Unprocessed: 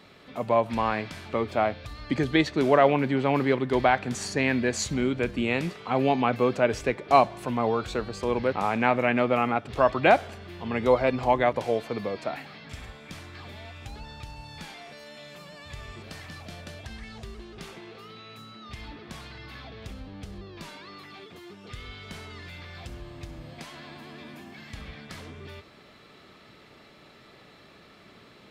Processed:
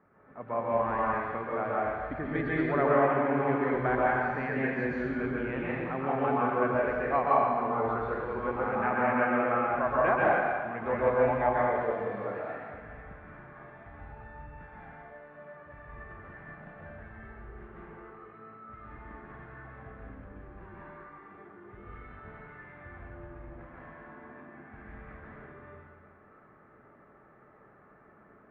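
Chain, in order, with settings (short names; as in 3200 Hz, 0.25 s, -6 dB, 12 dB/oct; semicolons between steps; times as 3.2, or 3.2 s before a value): low-pass opened by the level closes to 1300 Hz, open at -23.5 dBFS; ladder low-pass 1900 Hz, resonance 45%; plate-style reverb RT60 1.7 s, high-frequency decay 0.9×, pre-delay 0.115 s, DRR -6.5 dB; gain -3.5 dB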